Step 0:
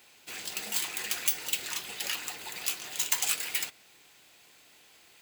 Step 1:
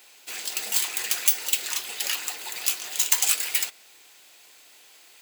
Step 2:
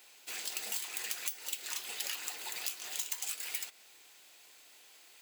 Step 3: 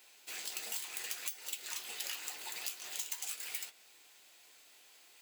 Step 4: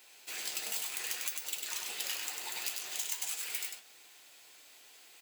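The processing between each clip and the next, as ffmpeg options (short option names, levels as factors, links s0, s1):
-af "bass=f=250:g=-13,treble=f=4000:g=4,volume=1.5"
-af "acompressor=threshold=0.0447:ratio=16,volume=0.501"
-af "flanger=delay=7.4:depth=10:regen=-47:speed=0.71:shape=triangular,volume=1.19"
-af "aecho=1:1:99:0.631,volume=1.33"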